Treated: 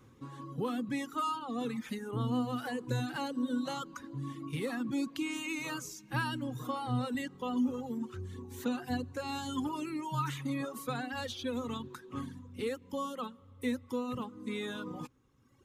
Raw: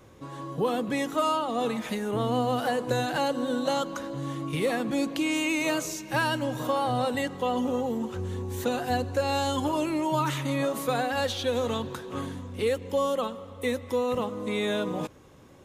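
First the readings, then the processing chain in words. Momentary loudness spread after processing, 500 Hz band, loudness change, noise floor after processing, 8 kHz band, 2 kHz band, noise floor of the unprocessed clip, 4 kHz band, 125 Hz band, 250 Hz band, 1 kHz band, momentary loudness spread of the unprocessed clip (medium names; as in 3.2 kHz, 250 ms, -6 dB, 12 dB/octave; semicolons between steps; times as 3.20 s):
9 LU, -13.0 dB, -8.0 dB, -59 dBFS, -9.5 dB, -8.5 dB, -45 dBFS, -9.5 dB, -5.0 dB, -5.0 dB, -9.5 dB, 7 LU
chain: reverb removal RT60 1.4 s; graphic EQ with 31 bands 125 Hz +9 dB, 250 Hz +9 dB, 630 Hz -12 dB, 1.25 kHz +4 dB; trim -8 dB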